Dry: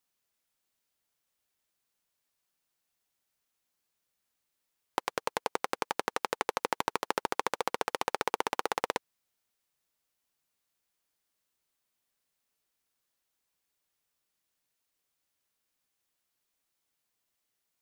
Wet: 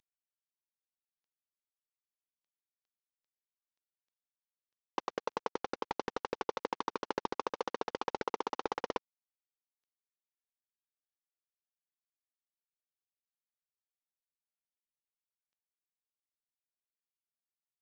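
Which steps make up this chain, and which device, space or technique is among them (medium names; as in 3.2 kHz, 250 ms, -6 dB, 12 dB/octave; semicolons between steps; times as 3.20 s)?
early wireless headset (high-pass 220 Hz 24 dB/octave; CVSD coder 32 kbps)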